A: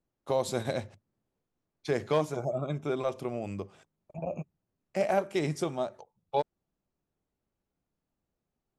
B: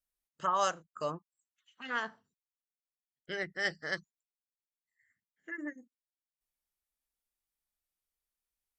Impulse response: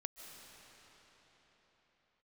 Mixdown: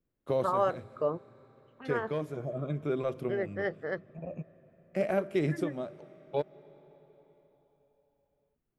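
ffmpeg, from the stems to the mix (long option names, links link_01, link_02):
-filter_complex "[0:a]equalizer=frequency=840:width_type=o:width=0.7:gain=-11,volume=1dB,asplit=2[link_01][link_02];[link_02]volume=-12.5dB[link_03];[1:a]lowpass=frequency=1200:poles=1,equalizer=frequency=460:width_type=o:width=0.77:gain=9.5,volume=2dB,asplit=3[link_04][link_05][link_06];[link_05]volume=-22dB[link_07];[link_06]apad=whole_len=387241[link_08];[link_01][link_08]sidechaincompress=threshold=-36dB:ratio=8:attack=31:release=1420[link_09];[2:a]atrim=start_sample=2205[link_10];[link_03][link_07]amix=inputs=2:normalize=0[link_11];[link_11][link_10]afir=irnorm=-1:irlink=0[link_12];[link_09][link_04][link_12]amix=inputs=3:normalize=0,equalizer=frequency=6400:width_type=o:width=1.8:gain=-14"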